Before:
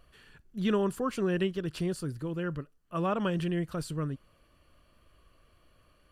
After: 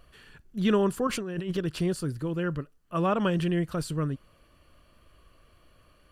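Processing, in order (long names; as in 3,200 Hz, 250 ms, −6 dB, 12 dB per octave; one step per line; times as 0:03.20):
0:01.07–0:01.57: compressor whose output falls as the input rises −36 dBFS, ratio −1
level +4 dB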